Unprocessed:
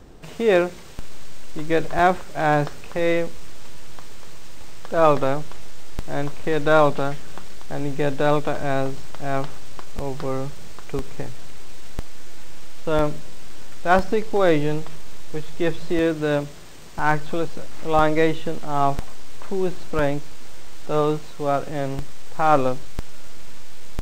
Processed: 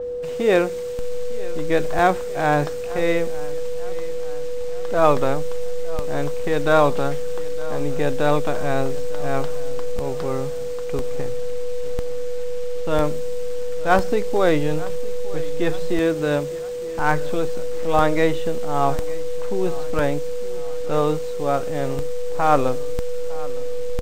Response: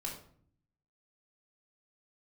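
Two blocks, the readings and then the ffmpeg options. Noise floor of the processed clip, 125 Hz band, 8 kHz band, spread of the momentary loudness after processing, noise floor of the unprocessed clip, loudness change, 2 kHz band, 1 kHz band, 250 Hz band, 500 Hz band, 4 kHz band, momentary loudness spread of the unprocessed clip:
−27 dBFS, 0.0 dB, can't be measured, 10 LU, −31 dBFS, −0.5 dB, 0.0 dB, 0.0 dB, 0.0 dB, +2.5 dB, +0.5 dB, 20 LU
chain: -filter_complex "[0:a]aeval=exprs='val(0)+0.0562*sin(2*PI*490*n/s)':channel_layout=same,asplit=2[link_01][link_02];[link_02]aecho=0:1:909|1818|2727|3636:0.112|0.0583|0.0303|0.0158[link_03];[link_01][link_03]amix=inputs=2:normalize=0,adynamicequalizer=threshold=0.00708:dfrequency=6300:dqfactor=0.7:tfrequency=6300:tqfactor=0.7:attack=5:release=100:ratio=0.375:range=2.5:mode=boostabove:tftype=highshelf"

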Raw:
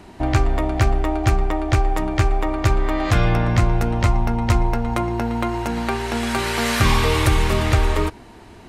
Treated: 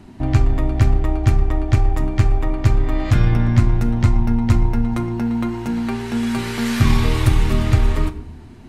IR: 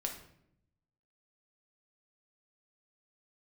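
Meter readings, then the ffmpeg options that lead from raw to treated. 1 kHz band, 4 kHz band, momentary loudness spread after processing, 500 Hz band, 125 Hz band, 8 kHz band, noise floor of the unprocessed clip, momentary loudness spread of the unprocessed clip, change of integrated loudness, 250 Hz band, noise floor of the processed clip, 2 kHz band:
−6.5 dB, −4.5 dB, 6 LU, −4.5 dB, +3.5 dB, −5.0 dB, −43 dBFS, 6 LU, +1.5 dB, +3.0 dB, −39 dBFS, −5.0 dB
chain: -filter_complex "[0:a]aeval=exprs='0.562*(cos(1*acos(clip(val(0)/0.562,-1,1)))-cos(1*PI/2))+0.0562*(cos(2*acos(clip(val(0)/0.562,-1,1)))-cos(2*PI/2))':channel_layout=same,lowshelf=frequency=340:width_type=q:width=1.5:gain=7.5,asplit=2[link_01][link_02];[1:a]atrim=start_sample=2205,adelay=8[link_03];[link_02][link_03]afir=irnorm=-1:irlink=0,volume=-7.5dB[link_04];[link_01][link_04]amix=inputs=2:normalize=0,volume=-5.5dB"

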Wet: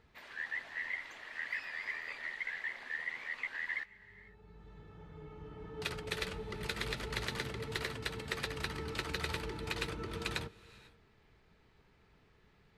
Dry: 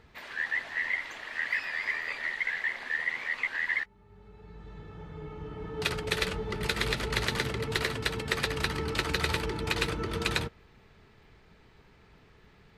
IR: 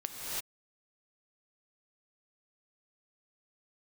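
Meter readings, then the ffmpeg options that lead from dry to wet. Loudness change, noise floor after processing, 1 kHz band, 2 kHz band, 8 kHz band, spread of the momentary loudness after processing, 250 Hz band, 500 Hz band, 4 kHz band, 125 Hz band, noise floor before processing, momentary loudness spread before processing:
−8.5 dB, −67 dBFS, −8.5 dB, −8.5 dB, −8.5 dB, 17 LU, −8.5 dB, −8.5 dB, −8.5 dB, −8.5 dB, −59 dBFS, 12 LU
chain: -filter_complex "[0:a]asplit=2[link_01][link_02];[1:a]atrim=start_sample=2205,asetrate=29988,aresample=44100[link_03];[link_02][link_03]afir=irnorm=-1:irlink=0,volume=-24.5dB[link_04];[link_01][link_04]amix=inputs=2:normalize=0,volume=-9dB"

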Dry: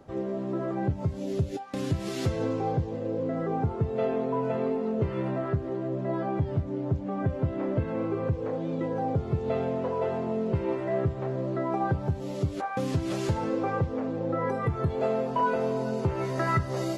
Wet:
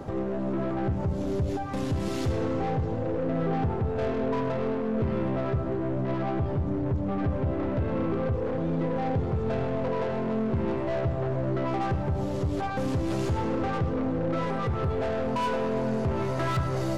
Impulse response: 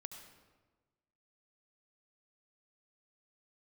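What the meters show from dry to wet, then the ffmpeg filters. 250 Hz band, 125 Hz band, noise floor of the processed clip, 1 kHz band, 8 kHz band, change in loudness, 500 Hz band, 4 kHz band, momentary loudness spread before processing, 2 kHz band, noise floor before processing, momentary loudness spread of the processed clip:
+2.0 dB, +1.0 dB, −30 dBFS, 0.0 dB, can't be measured, +1.0 dB, 0.0 dB, +2.0 dB, 4 LU, +0.5 dB, −36 dBFS, 2 LU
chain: -filter_complex "[0:a]equalizer=frequency=1000:width_type=o:width=1.6:gain=3,asoftclip=type=tanh:threshold=-26.5dB,aeval=exprs='0.0473*(cos(1*acos(clip(val(0)/0.0473,-1,1)))-cos(1*PI/2))+0.00531*(cos(4*acos(clip(val(0)/0.0473,-1,1)))-cos(4*PI/2))+0.000299*(cos(6*acos(clip(val(0)/0.0473,-1,1)))-cos(6*PI/2))':channel_layout=same,alimiter=level_in=13dB:limit=-24dB:level=0:latency=1:release=246,volume=-13dB,asplit=2[link_01][link_02];[1:a]atrim=start_sample=2205,lowshelf=frequency=430:gain=9[link_03];[link_02][link_03]afir=irnorm=-1:irlink=0,volume=5.5dB[link_04];[link_01][link_04]amix=inputs=2:normalize=0,volume=4.5dB"

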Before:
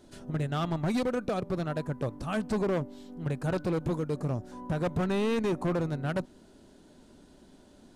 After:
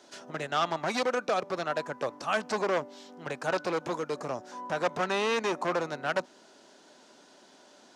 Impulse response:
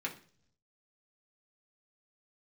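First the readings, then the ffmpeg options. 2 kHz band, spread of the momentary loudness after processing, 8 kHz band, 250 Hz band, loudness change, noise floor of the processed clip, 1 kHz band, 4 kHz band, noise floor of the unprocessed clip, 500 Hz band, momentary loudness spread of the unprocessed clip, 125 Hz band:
+7.5 dB, 9 LU, +6.5 dB, −7.5 dB, +0.5 dB, −57 dBFS, +6.5 dB, +7.0 dB, −57 dBFS, +1.5 dB, 7 LU, −13.5 dB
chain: -filter_complex "[0:a]highpass=240,acrossover=split=560 6200:gain=0.224 1 0.0631[link_01][link_02][link_03];[link_01][link_02][link_03]amix=inputs=3:normalize=0,aexciter=amount=1.5:drive=8.4:freq=5300,volume=7.5dB"

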